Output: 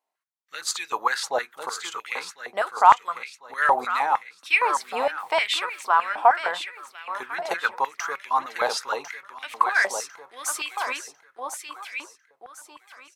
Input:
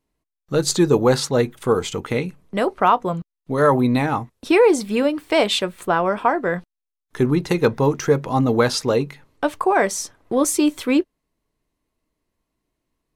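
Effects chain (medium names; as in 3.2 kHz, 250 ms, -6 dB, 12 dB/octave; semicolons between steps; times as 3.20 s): feedback delay 1049 ms, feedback 34%, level -8 dB; step-sequenced high-pass 6.5 Hz 750–2300 Hz; trim -6 dB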